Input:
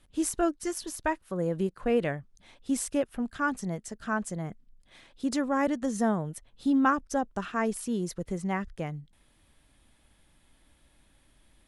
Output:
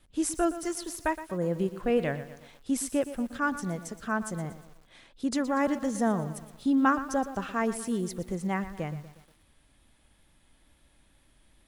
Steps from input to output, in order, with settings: wow and flutter 16 cents; bit-crushed delay 119 ms, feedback 55%, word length 8-bit, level -13 dB

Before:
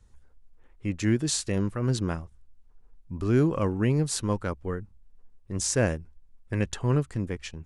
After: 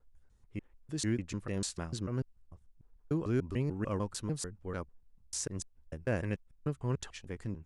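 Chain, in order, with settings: slices played last to first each 148 ms, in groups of 3; trim -8.5 dB

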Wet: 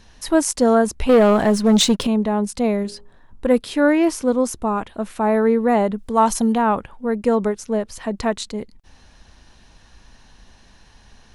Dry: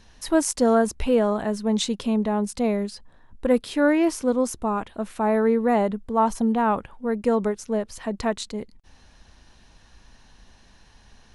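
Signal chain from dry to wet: 1.09–2.07 s: waveshaping leveller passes 2; 2.83–3.46 s: de-hum 45.39 Hz, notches 31; 5.98–6.58 s: treble shelf 2.4 kHz +10.5 dB; trim +3.5 dB

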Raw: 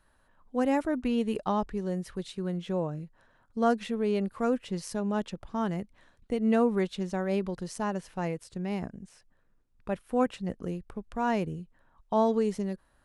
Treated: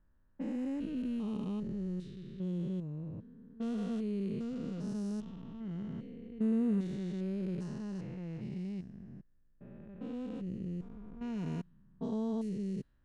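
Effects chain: spectrogram pixelated in time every 400 ms; FFT filter 150 Hz 0 dB, 320 Hz -4 dB, 750 Hz -17 dB, 3 kHz -6 dB; level-controlled noise filter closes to 1.4 kHz, open at -31 dBFS; 10.35–12.49 s: treble shelf 8.1 kHz +6.5 dB

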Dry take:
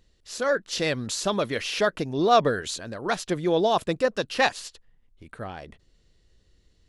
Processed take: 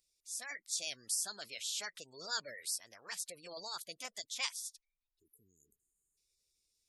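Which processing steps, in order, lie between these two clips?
pre-emphasis filter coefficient 0.97; formant shift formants +4 st; spectral selection erased 5.19–6.17 s, 470–6300 Hz; dynamic bell 880 Hz, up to -5 dB, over -53 dBFS, Q 1.7; spectral gate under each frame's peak -20 dB strong; trim -2.5 dB

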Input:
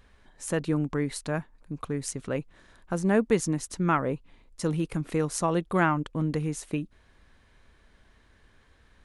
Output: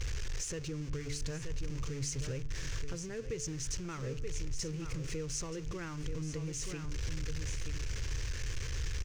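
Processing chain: jump at every zero crossing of -28 dBFS; peaking EQ 4.6 kHz +2.5 dB; de-hum 145.7 Hz, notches 12; on a send: delay 928 ms -10 dB; on the sum: compression 2.5:1, threshold -29 dBFS, peak gain reduction 8.5 dB; FFT filter 130 Hz 0 dB, 200 Hz -20 dB, 460 Hz -8 dB, 670 Hz -23 dB, 2.6 kHz -8 dB, 3.9 kHz -14 dB, 6.2 kHz -2 dB, 11 kHz -24 dB; trim +1 dB

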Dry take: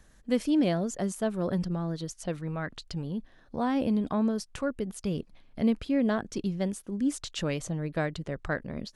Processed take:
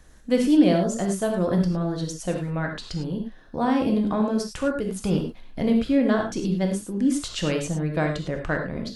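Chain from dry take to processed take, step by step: 5.01–5.62 s: waveshaping leveller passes 1; on a send: reverberation, pre-delay 3 ms, DRR 2 dB; on the sum: trim +4 dB

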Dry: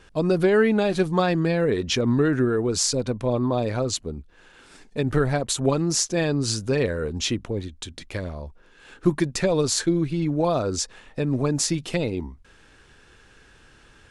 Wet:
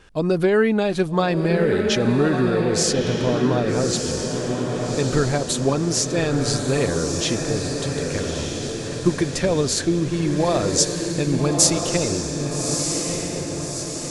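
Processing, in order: 10.13–11.87 s: treble shelf 4.1 kHz +11 dB; echo that smears into a reverb 1242 ms, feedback 57%, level -4 dB; trim +1 dB

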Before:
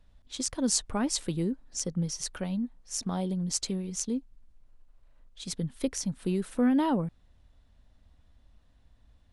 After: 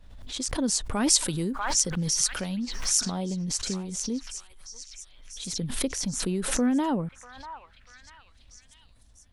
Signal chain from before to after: 0.91–3.10 s: treble shelf 2.8 kHz +11.5 dB; repeats whose band climbs or falls 642 ms, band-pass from 1.2 kHz, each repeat 0.7 oct, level -7 dB; swell ahead of each attack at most 49 dB/s

